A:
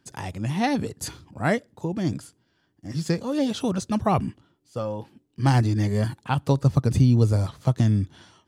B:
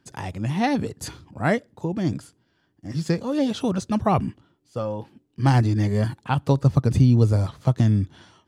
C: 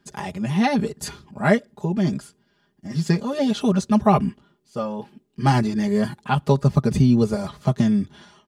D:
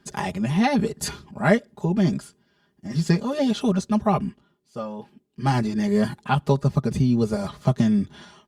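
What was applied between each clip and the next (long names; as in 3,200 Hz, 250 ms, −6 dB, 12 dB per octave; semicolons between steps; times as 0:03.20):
high-shelf EQ 5,100 Hz −5.5 dB; level +1.5 dB
comb filter 4.9 ms, depth 97%
speech leveller within 5 dB 0.5 s; level −1 dB; Opus 64 kbit/s 48,000 Hz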